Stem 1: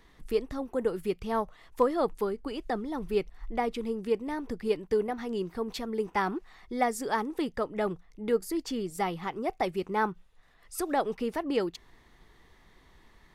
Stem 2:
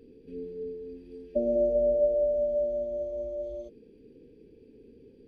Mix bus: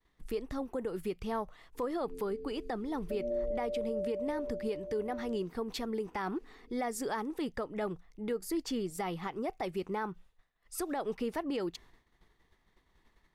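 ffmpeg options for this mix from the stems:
-filter_complex "[0:a]agate=range=0.0224:threshold=0.00355:ratio=3:detection=peak,volume=0.841[s0];[1:a]adelay=1750,volume=0.376[s1];[s0][s1]amix=inputs=2:normalize=0,alimiter=level_in=1.26:limit=0.0631:level=0:latency=1:release=103,volume=0.794"

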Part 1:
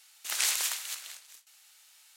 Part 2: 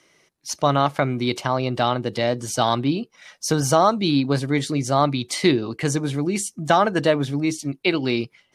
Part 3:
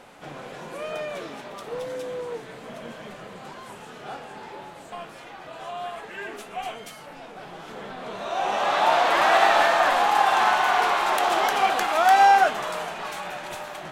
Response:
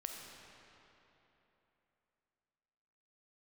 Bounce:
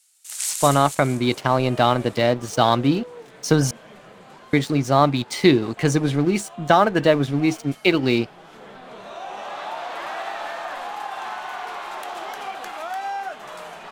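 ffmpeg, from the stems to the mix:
-filter_complex "[0:a]equalizer=f=8600:w=0.9:g=14,volume=0.266[s0];[1:a]highshelf=f=6600:g=-9.5,aeval=exprs='sgn(val(0))*max(abs(val(0))-0.0106,0)':c=same,volume=0.794,asplit=3[s1][s2][s3];[s1]atrim=end=3.71,asetpts=PTS-STARTPTS,afade=t=out:st=3.706:d=0.004:c=hsin[s4];[s2]atrim=start=3.71:end=4.53,asetpts=PTS-STARTPTS,volume=0[s5];[s3]atrim=start=4.53,asetpts=PTS-STARTPTS,afade=t=in:d=0.004:c=hsin[s6];[s4][s5][s6]concat=n=3:v=0:a=1[s7];[2:a]acompressor=threshold=0.0355:ratio=2,adelay=850,volume=0.251[s8];[s0][s7][s8]amix=inputs=3:normalize=0,dynaudnorm=f=150:g=5:m=2.37"

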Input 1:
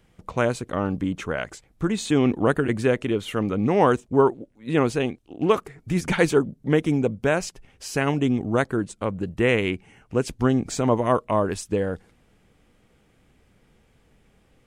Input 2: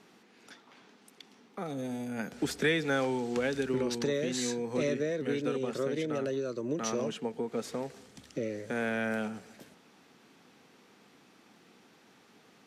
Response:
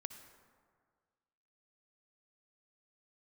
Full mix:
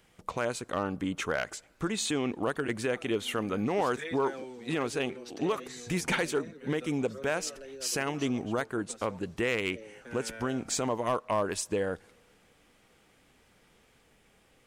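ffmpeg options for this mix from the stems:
-filter_complex "[0:a]highshelf=f=3400:g=3,alimiter=limit=0.168:level=0:latency=1:release=406,volume=1,asplit=2[s0][s1];[s1]volume=0.133[s2];[1:a]asplit=2[s3][s4];[s4]adelay=6.2,afreqshift=-1.8[s5];[s3][s5]amix=inputs=2:normalize=1,adelay=1350,volume=0.422[s6];[2:a]atrim=start_sample=2205[s7];[s2][s7]afir=irnorm=-1:irlink=0[s8];[s0][s6][s8]amix=inputs=3:normalize=0,lowshelf=f=290:g=-10.5,asoftclip=type=hard:threshold=0.1"

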